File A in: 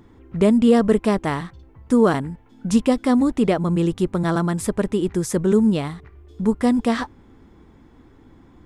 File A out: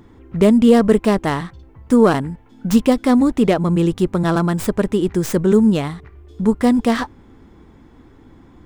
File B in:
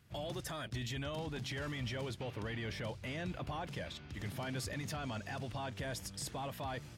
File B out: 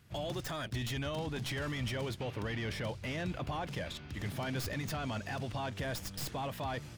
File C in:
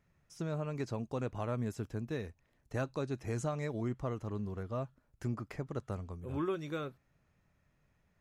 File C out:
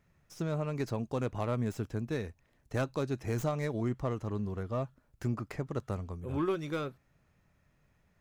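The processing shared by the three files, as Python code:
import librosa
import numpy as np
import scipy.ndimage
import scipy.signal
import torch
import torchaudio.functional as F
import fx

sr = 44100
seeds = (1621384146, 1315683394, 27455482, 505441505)

y = fx.tracing_dist(x, sr, depth_ms=0.078)
y = F.gain(torch.from_numpy(y), 3.5).numpy()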